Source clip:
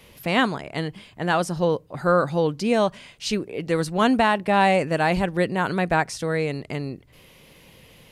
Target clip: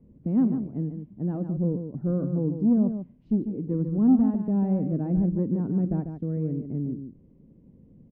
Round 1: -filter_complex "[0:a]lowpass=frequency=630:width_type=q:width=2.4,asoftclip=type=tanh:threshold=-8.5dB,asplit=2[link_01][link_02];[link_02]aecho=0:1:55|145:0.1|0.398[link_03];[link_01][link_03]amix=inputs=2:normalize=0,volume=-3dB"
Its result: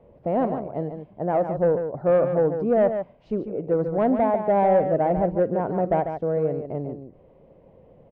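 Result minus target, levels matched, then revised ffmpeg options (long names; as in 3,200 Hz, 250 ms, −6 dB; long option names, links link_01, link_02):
500 Hz band +12.0 dB
-filter_complex "[0:a]lowpass=frequency=250:width_type=q:width=2.4,asoftclip=type=tanh:threshold=-8.5dB,asplit=2[link_01][link_02];[link_02]aecho=0:1:55|145:0.1|0.398[link_03];[link_01][link_03]amix=inputs=2:normalize=0,volume=-3dB"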